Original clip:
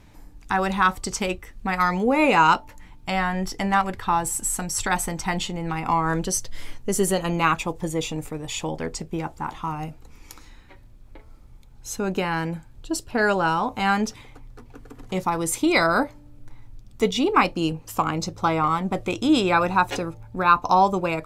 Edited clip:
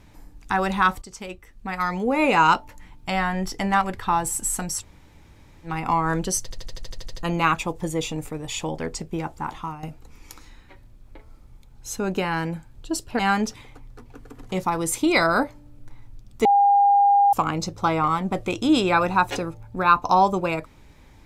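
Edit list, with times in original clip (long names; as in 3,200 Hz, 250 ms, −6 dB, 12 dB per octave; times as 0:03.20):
0:01.02–0:02.51: fade in, from −14.5 dB
0:04.79–0:05.68: fill with room tone, crossfade 0.10 s
0:06.43: stutter in place 0.08 s, 10 plays
0:09.57–0:09.83: fade out, to −11.5 dB
0:13.19–0:13.79: remove
0:17.05–0:17.93: beep over 806 Hz −13 dBFS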